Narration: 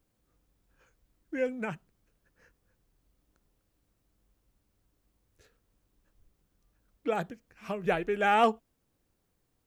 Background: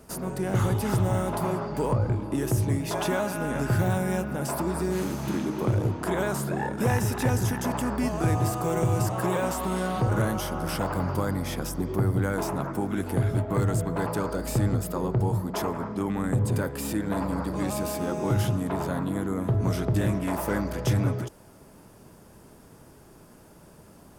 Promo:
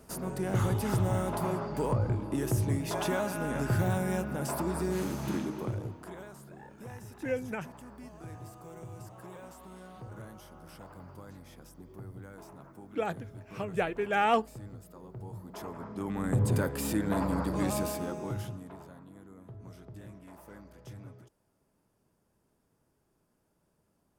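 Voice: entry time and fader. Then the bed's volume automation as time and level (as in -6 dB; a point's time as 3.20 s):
5.90 s, -2.0 dB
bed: 5.36 s -4 dB
6.33 s -21 dB
15.06 s -21 dB
16.44 s -1.5 dB
17.77 s -1.5 dB
19.00 s -23 dB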